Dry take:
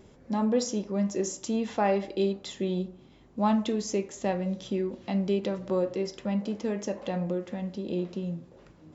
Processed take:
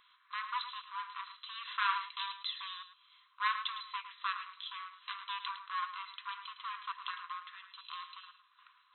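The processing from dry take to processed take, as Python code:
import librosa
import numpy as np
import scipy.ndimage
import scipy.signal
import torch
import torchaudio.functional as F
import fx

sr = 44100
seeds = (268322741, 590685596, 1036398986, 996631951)

p1 = np.minimum(x, 2.0 * 10.0 ** (-27.5 / 20.0) - x)
p2 = fx.brickwall_bandpass(p1, sr, low_hz=980.0, high_hz=4100.0)
p3 = fx.peak_eq(p2, sr, hz=2000.0, db=-11.0, octaves=1.6)
p4 = p3 + fx.echo_single(p3, sr, ms=108, db=-11.0, dry=0)
y = p4 * 10.0 ** (9.0 / 20.0)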